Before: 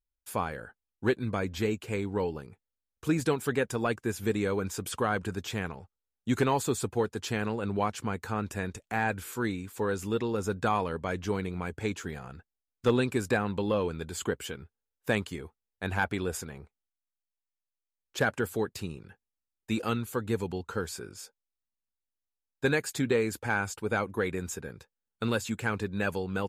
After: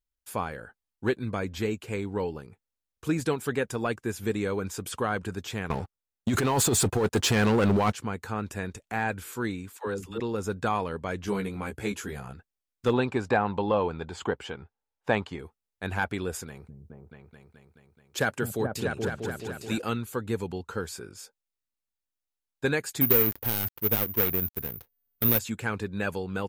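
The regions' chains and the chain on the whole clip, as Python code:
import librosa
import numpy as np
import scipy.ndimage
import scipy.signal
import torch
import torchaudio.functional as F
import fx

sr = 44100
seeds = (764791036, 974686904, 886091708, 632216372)

y = fx.chain(x, sr, fx.over_compress(threshold_db=-31.0, ratio=-1.0),
    fx.leveller(passes=3), at=(5.7, 7.93))
y = fx.chain(y, sr, fx.level_steps(step_db=10),
    fx.dispersion(late='lows', ms=75.0, hz=440.0), at=(9.77, 10.2))
y = fx.chain(y, sr, fx.peak_eq(hz=11000.0, db=10.0, octaves=0.5),
    fx.doubler(ms=15.0, db=-3.5), at=(11.26, 12.34))
y = fx.chain(y, sr, fx.lowpass(hz=4600.0, slope=12),
    fx.peak_eq(hz=830.0, db=10.5, octaves=0.83), at=(12.93, 15.39))
y = fx.chain(y, sr, fx.highpass(hz=55.0, slope=12),
    fx.high_shelf(hz=4800.0, db=6.5),
    fx.echo_opening(ms=214, hz=200, octaves=2, feedback_pct=70, wet_db=0), at=(16.47, 19.78))
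y = fx.chain(y, sr, fx.dead_time(dead_ms=0.29),
    fx.low_shelf(hz=130.0, db=7.0),
    fx.resample_bad(factor=3, down='filtered', up='zero_stuff'), at=(23.01, 25.39))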